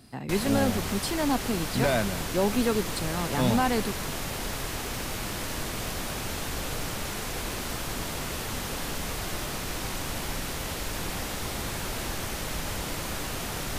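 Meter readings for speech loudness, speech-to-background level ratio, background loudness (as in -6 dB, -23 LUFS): -28.0 LUFS, 4.5 dB, -32.5 LUFS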